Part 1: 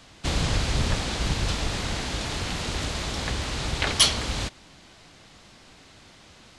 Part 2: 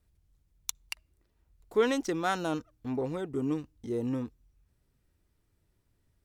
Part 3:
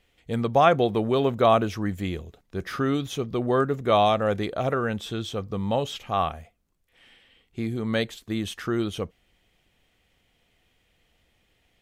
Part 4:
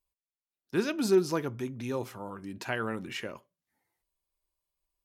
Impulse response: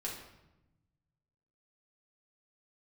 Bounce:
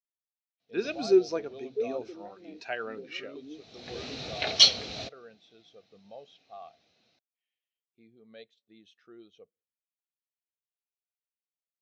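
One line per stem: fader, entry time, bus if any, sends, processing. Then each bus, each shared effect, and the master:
-3.5 dB, 0.60 s, no send, auto duck -20 dB, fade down 1.40 s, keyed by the fourth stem
-9.5 dB, 0.00 s, no send, band-pass 360 Hz, Q 1.5
-15.0 dB, 0.40 s, send -23.5 dB, limiter -15 dBFS, peak gain reduction 8.5 dB; low shelf 400 Hz -8 dB
+2.0 dB, 0.00 s, no send, low shelf 430 Hz -10 dB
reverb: on, RT60 0.95 s, pre-delay 4 ms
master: speaker cabinet 130–6800 Hz, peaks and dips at 460 Hz +4 dB, 690 Hz +6 dB, 1000 Hz -5 dB, 2500 Hz +5 dB, 4000 Hz +7 dB, 5700 Hz +6 dB; spectral expander 1.5:1

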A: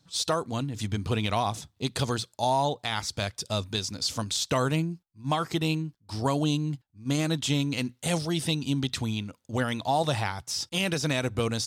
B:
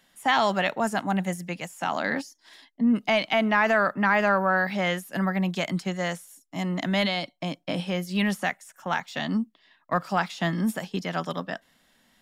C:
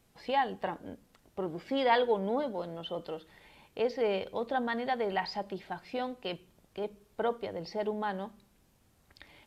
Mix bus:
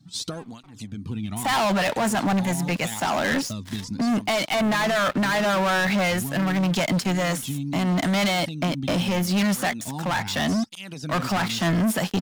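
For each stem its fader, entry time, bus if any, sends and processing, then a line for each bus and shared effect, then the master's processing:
+3.0 dB, 0.00 s, no send, resonant low shelf 320 Hz +10 dB, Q 1.5; compressor 12:1, threshold -27 dBFS, peak gain reduction 15 dB; tape flanging out of phase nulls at 0.79 Hz, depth 2.1 ms
-3.0 dB, 1.20 s, no send, sample leveller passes 5
-19.5 dB, 0.00 s, no send, minimum comb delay 0.89 ms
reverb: off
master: limiter -18.5 dBFS, peak gain reduction 8 dB

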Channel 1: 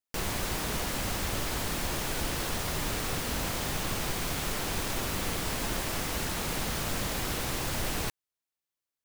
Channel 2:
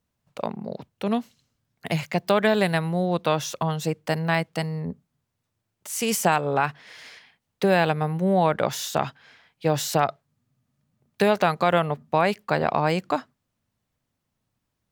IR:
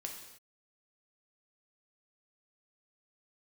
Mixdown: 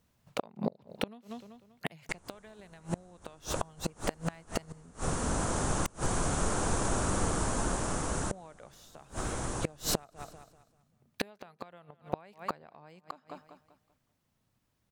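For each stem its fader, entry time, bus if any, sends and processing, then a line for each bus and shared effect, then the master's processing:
-0.5 dB, 1.95 s, no send, echo send -11.5 dB, steep low-pass 10000 Hz 96 dB/oct; band shelf 3100 Hz -12 dB
+2.5 dB, 0.00 s, muted 5.87–8.31, no send, echo send -19 dB, compressor 2:1, threshold -25 dBFS, peak gain reduction 6 dB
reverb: off
echo: feedback echo 0.194 s, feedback 33%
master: vocal rider within 4 dB 2 s; flipped gate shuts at -17 dBFS, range -28 dB

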